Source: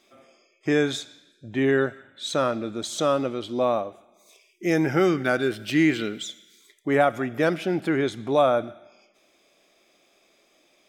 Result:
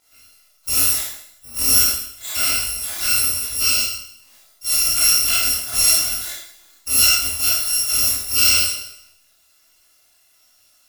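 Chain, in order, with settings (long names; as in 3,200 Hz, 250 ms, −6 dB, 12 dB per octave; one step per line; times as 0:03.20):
samples in bit-reversed order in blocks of 256 samples
four-comb reverb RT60 0.68 s, combs from 26 ms, DRR −4 dB
micro pitch shift up and down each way 39 cents
level +3.5 dB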